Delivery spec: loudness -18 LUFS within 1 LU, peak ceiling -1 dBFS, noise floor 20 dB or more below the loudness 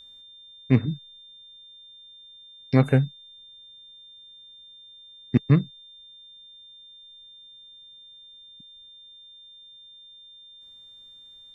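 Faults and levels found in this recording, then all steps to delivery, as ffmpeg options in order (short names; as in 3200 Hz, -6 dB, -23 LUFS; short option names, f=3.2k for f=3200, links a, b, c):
steady tone 3600 Hz; tone level -46 dBFS; loudness -23.5 LUFS; peak -4.0 dBFS; loudness target -18.0 LUFS
-> -af "bandreject=f=3.6k:w=30"
-af "volume=5.5dB,alimiter=limit=-1dB:level=0:latency=1"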